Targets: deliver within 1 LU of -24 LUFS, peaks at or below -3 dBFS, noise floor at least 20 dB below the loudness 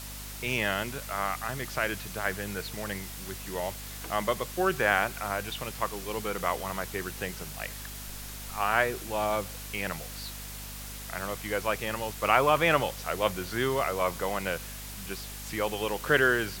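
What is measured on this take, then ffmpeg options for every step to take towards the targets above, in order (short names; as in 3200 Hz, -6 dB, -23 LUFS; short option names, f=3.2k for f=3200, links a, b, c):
hum 50 Hz; harmonics up to 250 Hz; hum level -41 dBFS; noise floor -41 dBFS; noise floor target -51 dBFS; loudness -30.5 LUFS; peak -6.5 dBFS; loudness target -24.0 LUFS
-> -af "bandreject=f=50:t=h:w=6,bandreject=f=100:t=h:w=6,bandreject=f=150:t=h:w=6,bandreject=f=200:t=h:w=6,bandreject=f=250:t=h:w=6"
-af "afftdn=nr=10:nf=-41"
-af "volume=6.5dB,alimiter=limit=-3dB:level=0:latency=1"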